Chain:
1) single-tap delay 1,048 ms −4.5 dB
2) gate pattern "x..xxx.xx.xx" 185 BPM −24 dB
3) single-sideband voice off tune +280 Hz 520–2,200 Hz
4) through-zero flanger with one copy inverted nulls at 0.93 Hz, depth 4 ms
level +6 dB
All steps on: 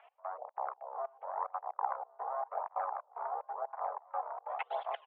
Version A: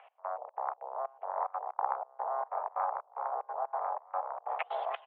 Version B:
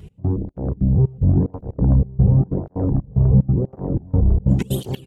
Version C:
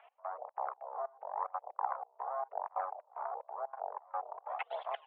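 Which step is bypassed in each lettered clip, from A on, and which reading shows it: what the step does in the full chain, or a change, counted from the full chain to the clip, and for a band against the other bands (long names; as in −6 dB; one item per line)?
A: 4, change in crest factor −1.5 dB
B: 3, change in crest factor −8.0 dB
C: 1, change in integrated loudness −1.0 LU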